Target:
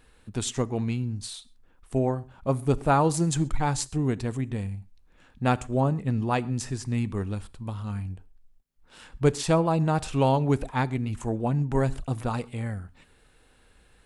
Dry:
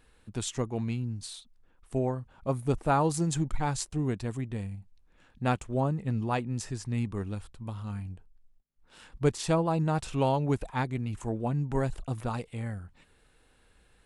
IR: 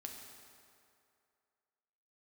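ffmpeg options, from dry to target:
-filter_complex "[0:a]asplit=2[s0][s1];[1:a]atrim=start_sample=2205,atrim=end_sample=6174[s2];[s1][s2]afir=irnorm=-1:irlink=0,volume=0.376[s3];[s0][s3]amix=inputs=2:normalize=0,volume=1.33"

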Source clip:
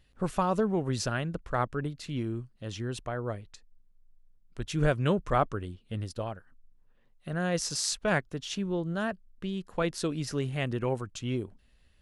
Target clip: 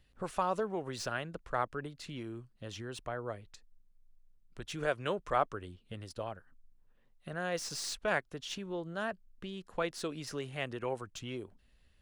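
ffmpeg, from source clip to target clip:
-filter_complex "[0:a]acrossover=split=380|4100[s0][s1][s2];[s0]acompressor=threshold=0.00891:ratio=6[s3];[s2]aeval=exprs='(tanh(70.8*val(0)+0.3)-tanh(0.3))/70.8':c=same[s4];[s3][s1][s4]amix=inputs=3:normalize=0,volume=0.708"

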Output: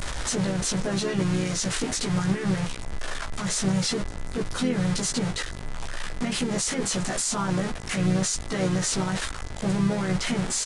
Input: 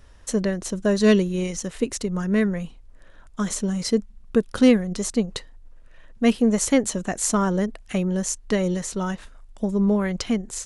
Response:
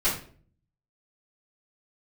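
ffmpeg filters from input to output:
-filter_complex "[0:a]aeval=exprs='val(0)+0.5*0.1*sgn(val(0))':c=same,equalizer=f=2800:t=o:w=0.28:g=-2.5,bandreject=f=1100:w=23,acrossover=split=730[s0][s1];[s1]acontrast=23[s2];[s0][s2]amix=inputs=2:normalize=0,alimiter=limit=0.2:level=0:latency=1:release=40,aeval=exprs='val(0)+0.00316*sin(2*PI*2000*n/s)':c=same,asplit=2[s3][s4];[s4]adelay=16,volume=0.794[s5];[s3][s5]amix=inputs=2:normalize=0,asplit=3[s6][s7][s8];[s7]asetrate=29433,aresample=44100,atempo=1.49831,volume=0.355[s9];[s8]asetrate=37084,aresample=44100,atempo=1.18921,volume=0.447[s10];[s6][s9][s10]amix=inputs=3:normalize=0,aresample=22050,aresample=44100,volume=0.376"

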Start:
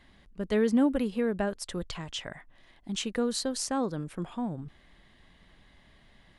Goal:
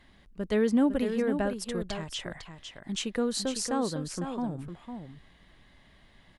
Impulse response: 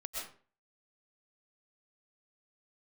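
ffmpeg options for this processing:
-af "aecho=1:1:504:0.398"

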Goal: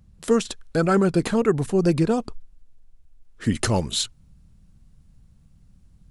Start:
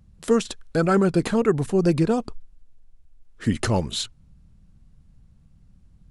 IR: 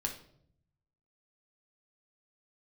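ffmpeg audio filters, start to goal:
-af "asetnsamples=n=441:p=0,asendcmd='3.55 highshelf g 7',highshelf=f=4800:g=2"

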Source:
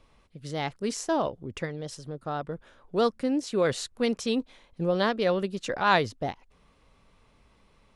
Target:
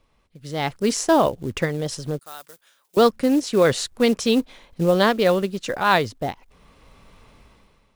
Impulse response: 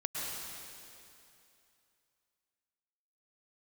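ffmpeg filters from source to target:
-filter_complex "[0:a]acrusher=bits=6:mode=log:mix=0:aa=0.000001,dynaudnorm=f=130:g=9:m=5.31,asettb=1/sr,asplit=3[s0][s1][s2];[s0]atrim=end=2.194[s3];[s1]atrim=start=2.19:end=2.97,asetpts=PTS-STARTPTS,afade=t=in:d=0.004:c=qsin,afade=t=out:st=0.776:d=0.004:c=qsin,aderivative[s4];[s2]atrim=start=2.966[s5];[s3][s4]acrossfade=d=0.004:c1=hsin:c2=qsin[s6];[s6][s5]acrossfade=d=0.004:c1=qsin:c2=hsin,volume=0.668"

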